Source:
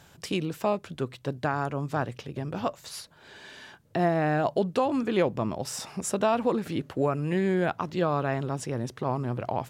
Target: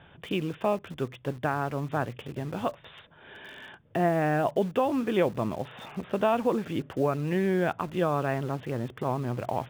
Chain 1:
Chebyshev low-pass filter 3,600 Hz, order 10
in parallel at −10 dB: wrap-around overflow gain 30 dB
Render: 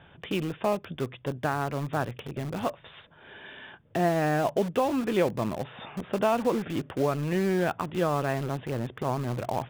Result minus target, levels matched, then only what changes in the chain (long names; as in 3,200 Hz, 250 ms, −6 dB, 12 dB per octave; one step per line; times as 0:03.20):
wrap-around overflow: distortion −13 dB
change: wrap-around overflow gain 39.5 dB